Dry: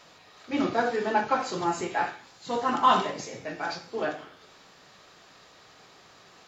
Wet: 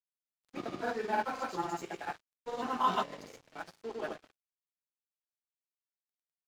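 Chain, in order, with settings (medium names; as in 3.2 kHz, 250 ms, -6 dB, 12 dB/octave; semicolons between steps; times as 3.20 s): granulator, pitch spread up and down by 0 st; crossover distortion -43.5 dBFS; trim -6 dB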